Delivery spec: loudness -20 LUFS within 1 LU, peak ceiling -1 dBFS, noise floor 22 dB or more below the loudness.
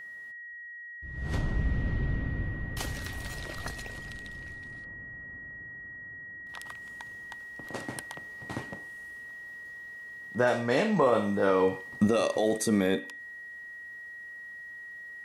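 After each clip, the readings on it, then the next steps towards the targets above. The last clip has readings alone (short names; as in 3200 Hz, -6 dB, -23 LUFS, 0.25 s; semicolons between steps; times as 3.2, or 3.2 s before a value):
steady tone 1900 Hz; tone level -41 dBFS; loudness -32.5 LUFS; peak -12.5 dBFS; loudness target -20.0 LUFS
-> notch 1900 Hz, Q 30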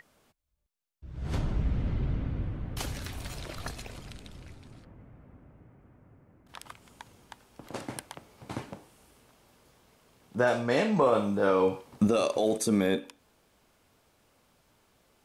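steady tone none; loudness -29.5 LUFS; peak -13.0 dBFS; loudness target -20.0 LUFS
-> gain +9.5 dB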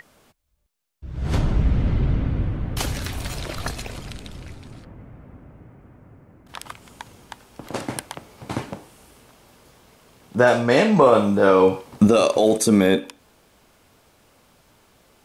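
loudness -20.0 LUFS; peak -3.5 dBFS; noise floor -58 dBFS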